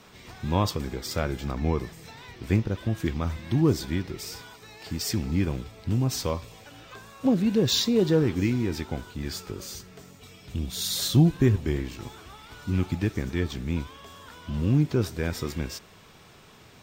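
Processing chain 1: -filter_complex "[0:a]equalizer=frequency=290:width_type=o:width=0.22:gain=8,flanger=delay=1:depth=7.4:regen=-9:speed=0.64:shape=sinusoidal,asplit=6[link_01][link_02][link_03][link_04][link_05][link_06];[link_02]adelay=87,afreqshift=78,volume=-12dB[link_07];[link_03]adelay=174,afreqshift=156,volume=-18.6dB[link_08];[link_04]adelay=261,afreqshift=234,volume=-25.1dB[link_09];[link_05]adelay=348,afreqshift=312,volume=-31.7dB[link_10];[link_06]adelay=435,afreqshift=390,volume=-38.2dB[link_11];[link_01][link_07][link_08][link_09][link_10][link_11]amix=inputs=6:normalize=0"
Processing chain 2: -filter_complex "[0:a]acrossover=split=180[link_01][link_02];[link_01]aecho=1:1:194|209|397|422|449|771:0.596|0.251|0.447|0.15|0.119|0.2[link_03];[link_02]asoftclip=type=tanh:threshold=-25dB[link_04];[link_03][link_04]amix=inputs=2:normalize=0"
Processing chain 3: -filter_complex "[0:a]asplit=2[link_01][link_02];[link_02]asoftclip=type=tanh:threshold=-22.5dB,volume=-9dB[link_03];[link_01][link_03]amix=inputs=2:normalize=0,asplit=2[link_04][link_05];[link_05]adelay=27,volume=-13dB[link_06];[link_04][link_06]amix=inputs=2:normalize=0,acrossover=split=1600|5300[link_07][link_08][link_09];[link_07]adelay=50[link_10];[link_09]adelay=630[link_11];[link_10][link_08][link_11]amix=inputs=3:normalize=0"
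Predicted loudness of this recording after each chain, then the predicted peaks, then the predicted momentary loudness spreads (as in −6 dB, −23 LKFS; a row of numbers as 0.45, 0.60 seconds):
−28.5, −28.5, −25.5 LKFS; −9.0, −12.5, −7.5 dBFS; 20, 14, 19 LU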